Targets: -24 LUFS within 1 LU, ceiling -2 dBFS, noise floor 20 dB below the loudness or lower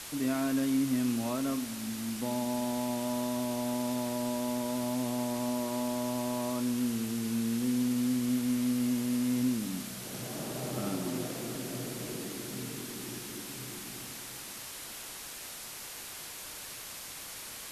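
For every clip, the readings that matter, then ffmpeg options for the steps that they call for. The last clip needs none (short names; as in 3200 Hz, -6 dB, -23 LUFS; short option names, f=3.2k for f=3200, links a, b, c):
noise floor -44 dBFS; noise floor target -54 dBFS; loudness -33.5 LUFS; peak -19.0 dBFS; loudness target -24.0 LUFS
-> -af "afftdn=nr=10:nf=-44"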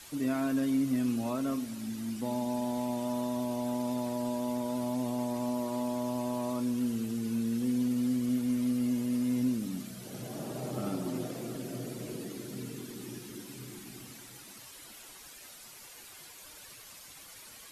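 noise floor -51 dBFS; noise floor target -53 dBFS
-> -af "afftdn=nr=6:nf=-51"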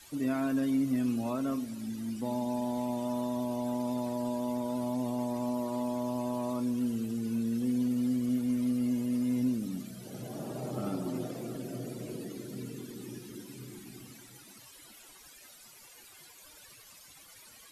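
noise floor -54 dBFS; loudness -33.0 LUFS; peak -20.5 dBFS; loudness target -24.0 LUFS
-> -af "volume=9dB"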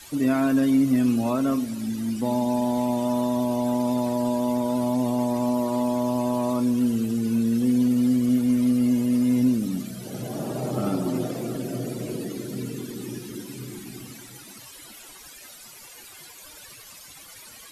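loudness -24.0 LUFS; peak -11.5 dBFS; noise floor -45 dBFS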